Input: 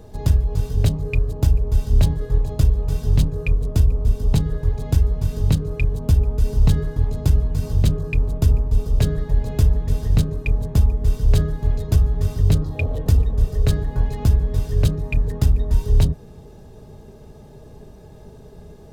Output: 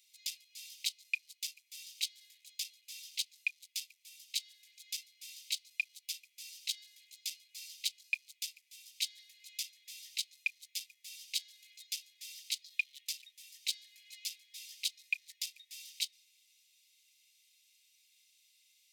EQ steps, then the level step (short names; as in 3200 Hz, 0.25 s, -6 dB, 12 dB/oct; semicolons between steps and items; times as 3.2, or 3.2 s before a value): steep high-pass 2100 Hz 96 dB/oct; dynamic EQ 4600 Hz, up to +7 dB, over -50 dBFS, Q 1; -4.5 dB